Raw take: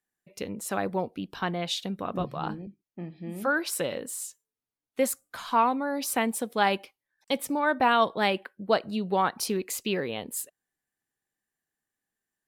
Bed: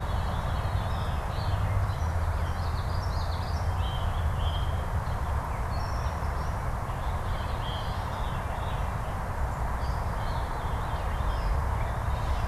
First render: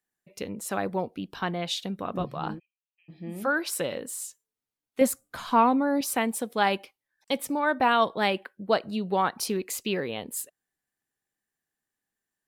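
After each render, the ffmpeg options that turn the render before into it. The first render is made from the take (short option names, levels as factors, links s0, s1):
-filter_complex "[0:a]asplit=3[s0][s1][s2];[s0]afade=t=out:st=2.58:d=0.02[s3];[s1]asuperpass=centerf=2700:order=4:qfactor=4.8,afade=t=in:st=2.58:d=0.02,afade=t=out:st=3.08:d=0.02[s4];[s2]afade=t=in:st=3.08:d=0.02[s5];[s3][s4][s5]amix=inputs=3:normalize=0,asettb=1/sr,asplit=3[s6][s7][s8];[s6]atrim=end=5.014[s9];[s7]atrim=start=5.01:end=6.01,asetpts=PTS-STARTPTS,afade=t=in:d=0.004:c=qsin,afade=t=out:st=0.996:d=0.004:c=qsin,lowshelf=f=440:g=9.5[s10];[s8]atrim=start=6.006[s11];[s9][s10]acrossfade=d=0.004:c1=hsin:c2=qsin[s12];[s12][s11]acrossfade=d=0.004:c1=qsin:c2=hsin"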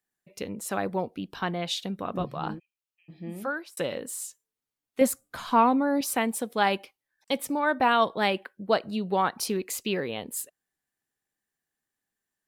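-filter_complex "[0:a]asplit=2[s0][s1];[s0]atrim=end=3.77,asetpts=PTS-STARTPTS,afade=t=out:st=3.29:d=0.48[s2];[s1]atrim=start=3.77,asetpts=PTS-STARTPTS,afade=t=in:d=0.004:c=hsin[s3];[s2][s3]concat=n=2:v=0:a=1"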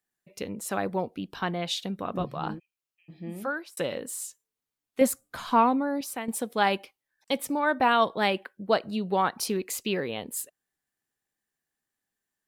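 -filter_complex "[0:a]asplit=2[s0][s1];[s0]atrim=end=6.28,asetpts=PTS-STARTPTS,afade=t=out:st=5.54:d=0.74:silence=0.298538[s2];[s1]atrim=start=6.28,asetpts=PTS-STARTPTS,afade=t=in:d=0.004:c=hsin:silence=0.298538[s3];[s2][s3]concat=n=2:v=0:a=1"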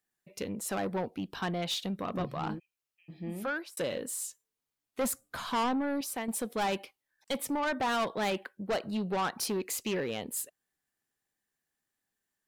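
-af "asoftclip=type=tanh:threshold=0.0473"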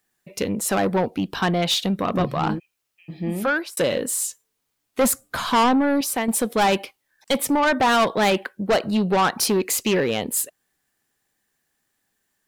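-af "volume=3.98"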